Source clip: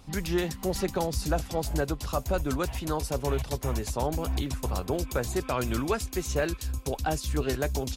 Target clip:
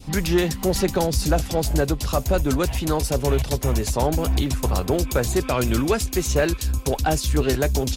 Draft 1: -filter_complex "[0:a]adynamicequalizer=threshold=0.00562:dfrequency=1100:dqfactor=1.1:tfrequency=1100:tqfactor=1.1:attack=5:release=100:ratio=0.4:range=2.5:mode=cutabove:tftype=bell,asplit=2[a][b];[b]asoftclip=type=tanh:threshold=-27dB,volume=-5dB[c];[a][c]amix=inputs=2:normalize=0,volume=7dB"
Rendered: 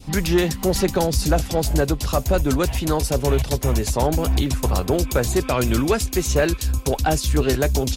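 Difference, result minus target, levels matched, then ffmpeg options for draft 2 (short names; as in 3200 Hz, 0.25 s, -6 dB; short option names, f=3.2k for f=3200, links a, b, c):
soft clip: distortion -6 dB
-filter_complex "[0:a]adynamicequalizer=threshold=0.00562:dfrequency=1100:dqfactor=1.1:tfrequency=1100:tqfactor=1.1:attack=5:release=100:ratio=0.4:range=2.5:mode=cutabove:tftype=bell,asplit=2[a][b];[b]asoftclip=type=tanh:threshold=-37dB,volume=-5dB[c];[a][c]amix=inputs=2:normalize=0,volume=7dB"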